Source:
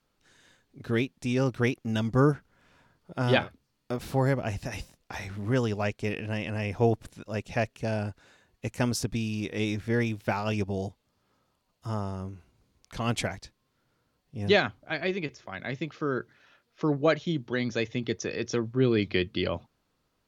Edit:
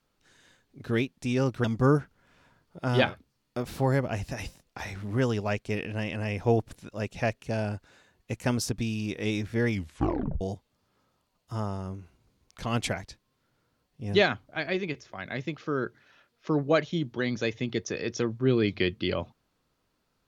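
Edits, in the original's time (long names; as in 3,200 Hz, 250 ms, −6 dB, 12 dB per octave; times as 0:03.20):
0:01.64–0:01.98: remove
0:10.03: tape stop 0.72 s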